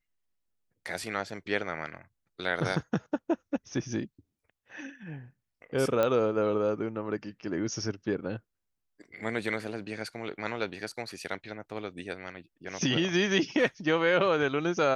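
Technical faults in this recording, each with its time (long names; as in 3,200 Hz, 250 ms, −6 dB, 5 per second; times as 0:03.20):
0:06.03: click −14 dBFS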